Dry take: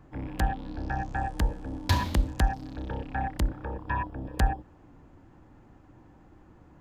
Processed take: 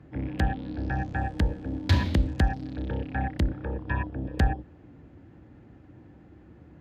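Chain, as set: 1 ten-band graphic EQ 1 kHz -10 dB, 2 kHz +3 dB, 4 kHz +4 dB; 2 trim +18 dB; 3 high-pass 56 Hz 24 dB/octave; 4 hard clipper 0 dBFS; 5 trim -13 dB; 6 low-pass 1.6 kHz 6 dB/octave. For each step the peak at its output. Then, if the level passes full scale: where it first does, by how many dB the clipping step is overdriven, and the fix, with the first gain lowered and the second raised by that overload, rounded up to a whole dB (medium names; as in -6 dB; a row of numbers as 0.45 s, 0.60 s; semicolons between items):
-12.0 dBFS, +6.0 dBFS, +6.0 dBFS, 0.0 dBFS, -13.0 dBFS, -13.0 dBFS; step 2, 6.0 dB; step 2 +12 dB, step 5 -7 dB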